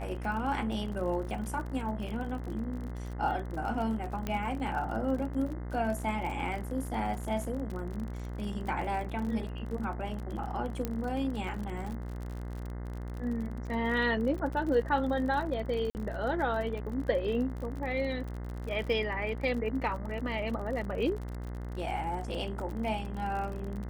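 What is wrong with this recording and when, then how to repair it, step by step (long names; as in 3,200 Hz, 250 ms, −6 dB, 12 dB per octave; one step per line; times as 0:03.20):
mains buzz 60 Hz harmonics 35 −38 dBFS
surface crackle 44 per second −37 dBFS
0:04.27: click −19 dBFS
0:10.85: click −18 dBFS
0:15.90–0:15.95: drop-out 49 ms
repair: click removal
hum removal 60 Hz, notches 35
repair the gap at 0:15.90, 49 ms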